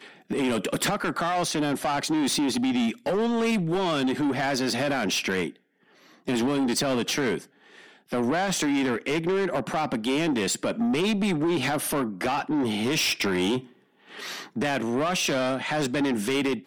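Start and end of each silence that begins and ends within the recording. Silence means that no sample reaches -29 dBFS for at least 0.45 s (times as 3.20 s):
5.48–6.28 s
7.38–8.13 s
13.59–14.20 s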